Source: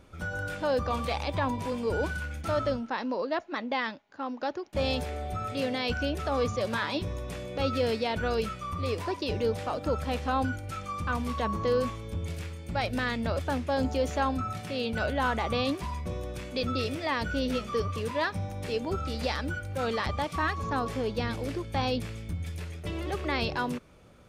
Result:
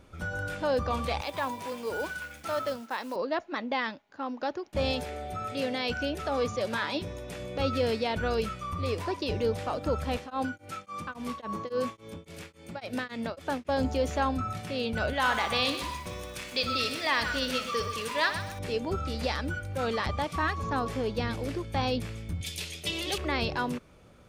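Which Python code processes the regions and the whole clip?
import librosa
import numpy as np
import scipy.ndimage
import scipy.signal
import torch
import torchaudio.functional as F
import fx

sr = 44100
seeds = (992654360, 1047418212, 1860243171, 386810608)

y = fx.chain(x, sr, fx.quant_companded(bits=6),
    fx.highpass(hz=560.0, slope=6), at=(1.21, 3.16))
y = fx.chain(y, sr, fx.low_shelf(hz=100.0, db=-11.0),
    fx.notch(hz=1100.0, q=13.0), at=(4.92, 7.4))
y = fx.chain(y, sr, fx.highpass(hz=180.0, slope=12),
    fx.tremolo_abs(hz=3.6), at=(10.17, 13.69))
y = fx.chain(y, sr, fx.tilt_shelf(db=-7.0, hz=820.0),
    fx.room_flutter(wall_m=10.3, rt60_s=0.3),
    fx.echo_crushed(ms=126, feedback_pct=35, bits=8, wet_db=-10.0), at=(15.13, 18.59))
y = fx.chain(y, sr, fx.highpass(hz=190.0, slope=6),
    fx.high_shelf_res(hz=2200.0, db=12.5, q=1.5), at=(22.41, 23.18))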